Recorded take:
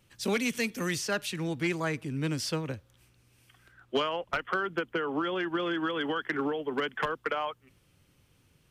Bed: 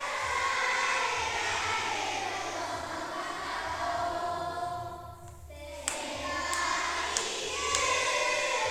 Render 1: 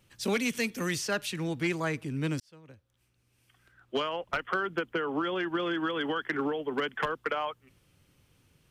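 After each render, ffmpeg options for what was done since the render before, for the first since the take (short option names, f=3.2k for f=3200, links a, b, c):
-filter_complex "[0:a]asplit=2[a][b];[a]atrim=end=2.4,asetpts=PTS-STARTPTS,afade=t=out:st=2.396:d=0.004:c=hsin[c];[b]atrim=start=2.4,asetpts=PTS-STARTPTS,afade=t=in:d=2.03[d];[c][d]concat=n=2:v=0:a=1"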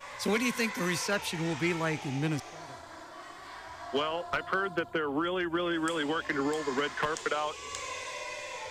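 -filter_complex "[1:a]volume=-10.5dB[a];[0:a][a]amix=inputs=2:normalize=0"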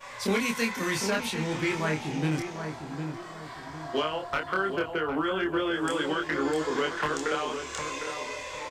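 -filter_complex "[0:a]asplit=2[a][b];[b]adelay=26,volume=-3dB[c];[a][c]amix=inputs=2:normalize=0,asplit=2[d][e];[e]adelay=755,lowpass=f=1.4k:p=1,volume=-6.5dB,asplit=2[f][g];[g]adelay=755,lowpass=f=1.4k:p=1,volume=0.39,asplit=2[h][i];[i]adelay=755,lowpass=f=1.4k:p=1,volume=0.39,asplit=2[j][k];[k]adelay=755,lowpass=f=1.4k:p=1,volume=0.39,asplit=2[l][m];[m]adelay=755,lowpass=f=1.4k:p=1,volume=0.39[n];[d][f][h][j][l][n]amix=inputs=6:normalize=0"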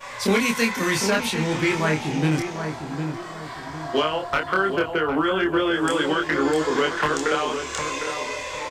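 -af "volume=6.5dB"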